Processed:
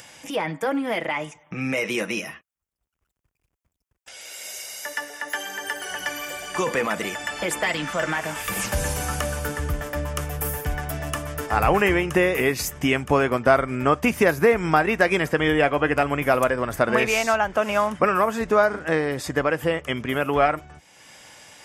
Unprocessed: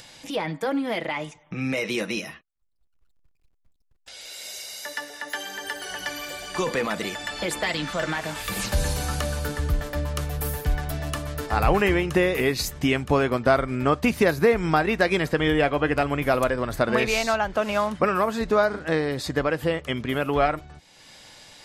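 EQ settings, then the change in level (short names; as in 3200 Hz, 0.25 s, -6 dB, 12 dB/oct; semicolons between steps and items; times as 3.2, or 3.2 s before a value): HPF 50 Hz; low shelf 480 Hz -5 dB; bell 4100 Hz -13.5 dB 0.4 oct; +4.0 dB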